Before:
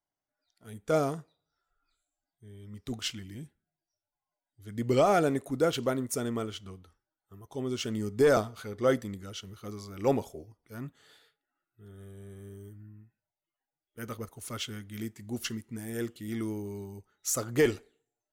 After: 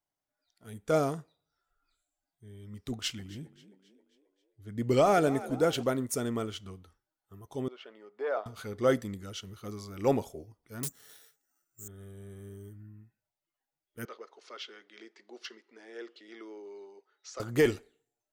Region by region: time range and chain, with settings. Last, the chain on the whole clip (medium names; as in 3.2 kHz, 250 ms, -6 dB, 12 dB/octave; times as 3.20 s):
2.91–5.83 s: frequency-shifting echo 268 ms, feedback 51%, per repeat +48 Hz, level -16.5 dB + tape noise reduction on one side only decoder only
7.68–8.46 s: median filter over 3 samples + ladder high-pass 460 Hz, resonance 25% + distance through air 390 m
10.83–11.88 s: careless resampling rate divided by 6×, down filtered, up zero stuff + loudspeaker Doppler distortion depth 0.83 ms
14.05–17.40 s: compression 1.5:1, threshold -44 dBFS + elliptic band-pass 390–5000 Hz, stop band 50 dB + hard clipper -31.5 dBFS
whole clip: none